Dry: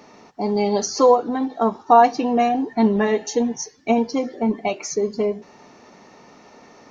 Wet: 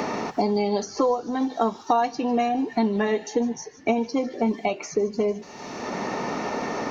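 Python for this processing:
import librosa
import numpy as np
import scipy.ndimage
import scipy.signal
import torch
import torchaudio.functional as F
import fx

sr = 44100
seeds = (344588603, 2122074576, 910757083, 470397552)

p1 = x + fx.echo_wet_highpass(x, sr, ms=147, feedback_pct=51, hz=2400.0, wet_db=-18.5, dry=0)
p2 = fx.band_squash(p1, sr, depth_pct=100)
y = p2 * 10.0 ** (-4.0 / 20.0)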